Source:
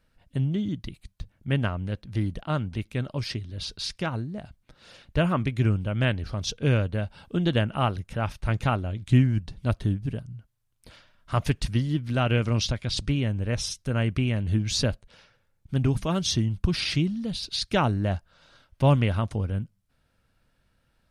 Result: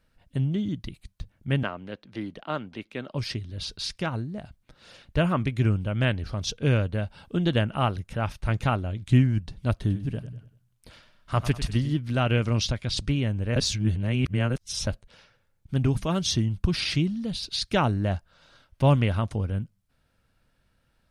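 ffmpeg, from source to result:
ffmpeg -i in.wav -filter_complex "[0:a]asettb=1/sr,asplit=3[link_01][link_02][link_03];[link_01]atrim=end=1.634[link_04];[link_02]atrim=start=1.63:end=3.15,asetpts=PTS-STARTPTS,afade=type=in:duration=0.004:curve=qsin,afade=type=out:start_time=1.516:duration=0.004:curve=qsin,acrossover=split=210 5300:gain=0.0891 1 0.224[link_05][link_06][link_07];[link_05][link_06][link_07]amix=inputs=3:normalize=0[link_08];[link_03]atrim=start=3.146[link_09];[link_04][link_08]acrossfade=duration=0.004:curve1=hsin:curve2=qsin[link_10];[link_10][link_09]acrossfade=duration=0.004:curve1=qsin:curve2=hsin,asettb=1/sr,asplit=3[link_11][link_12][link_13];[link_11]atrim=end=9.734[link_14];[link_12]atrim=start=9.73:end=11.94,asetpts=PTS-STARTPTS,afade=type=in:duration=0.004:curve=qsin,afade=type=out:start_time=2.206:duration=0.004:curve=qsin,aecho=1:1:97|194|291|388:0.224|0.0895|0.0358|0.0143,atrim=end_sample=97461[link_15];[link_13]atrim=start=11.936[link_16];[link_14][link_15]acrossfade=duration=0.004:curve1=hsin:curve2=qsin[link_17];[link_17][link_16]acrossfade=duration=0.004:curve1=qsin:curve2=hsin,asplit=3[link_18][link_19][link_20];[link_18]atrim=end=13.562[link_21];[link_19]atrim=start=13.558:end=14.872,asetpts=PTS-STARTPTS,areverse[link_22];[link_20]atrim=start=14.868[link_23];[link_21][link_22]acrossfade=duration=0.004:curve1=hsin:curve2=hsin[link_24];[link_24][link_23]acrossfade=duration=0.004:curve1=hsin:curve2=hsin" out.wav

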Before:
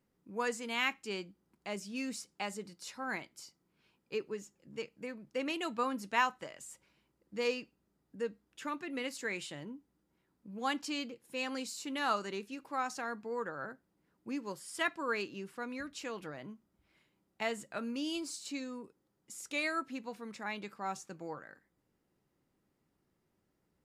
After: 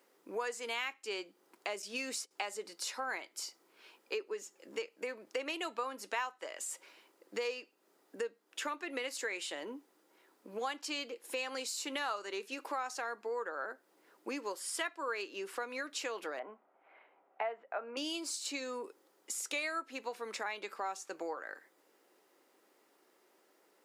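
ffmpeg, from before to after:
ffmpeg -i in.wav -filter_complex "[0:a]asettb=1/sr,asplit=3[link_01][link_02][link_03];[link_01]atrim=end=1.824[link_04];[link_02]atrim=start=1.82:end=2.31,asetpts=PTS-STARTPTS,afade=type=in:duration=0.004:curve=qsin,afade=type=out:start_time=0.486:duration=0.004:curve=qsin,agate=range=-12dB:threshold=-53dB:ratio=16:release=100:detection=peak[link_05];[link_03]atrim=start=2.306[link_06];[link_04][link_05]acrossfade=duration=0.004:curve1=hsin:curve2=qsin[link_07];[link_07][link_06]acrossfade=duration=0.004:curve1=qsin:curve2=hsin,asettb=1/sr,asplit=3[link_08][link_09][link_10];[link_08]atrim=end=16.394[link_11];[link_09]atrim=start=16.39:end=17.97,asetpts=PTS-STARTPTS,afade=type=in:duration=0.004:curve=qsin,afade=type=out:start_time=1.576:duration=0.004:curve=qsin,highpass=280,equalizer=frequency=340:width_type=q:width=4:gain=-8,equalizer=frequency=740:width_type=q:width=4:gain=9,equalizer=frequency=1800:width_type=q:width=4:gain=-4,lowpass=frequency=2100:width=0.5412,lowpass=frequency=2100:width=1.3066[link_12];[link_10]atrim=start=17.966[link_13];[link_11][link_12]acrossfade=duration=0.004:curve1=hsin:curve2=qsin[link_14];[link_14][link_13]acrossfade=duration=0.004:curve1=qsin:curve2=hsin,highpass=frequency=370:width=0.5412,highpass=frequency=370:width=1.3066,acompressor=threshold=-52dB:ratio=4,volume=14dB" out.wav

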